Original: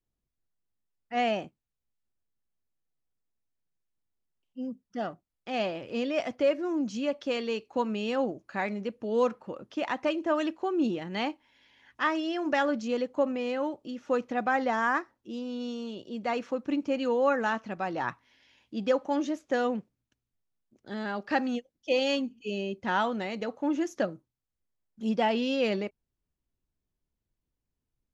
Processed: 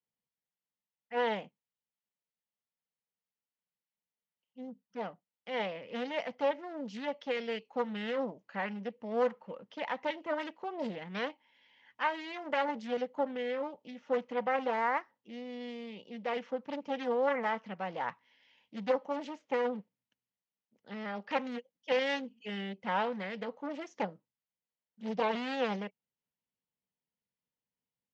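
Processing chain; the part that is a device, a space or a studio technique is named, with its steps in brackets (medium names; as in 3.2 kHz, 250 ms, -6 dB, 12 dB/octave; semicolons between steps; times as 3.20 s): full-range speaker at full volume (loudspeaker Doppler distortion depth 0.81 ms; cabinet simulation 160–6200 Hz, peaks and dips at 190 Hz +6 dB, 340 Hz -9 dB, 490 Hz +7 dB, 900 Hz +7 dB, 2 kHz +7 dB, 3 kHz +7 dB); trim -8.5 dB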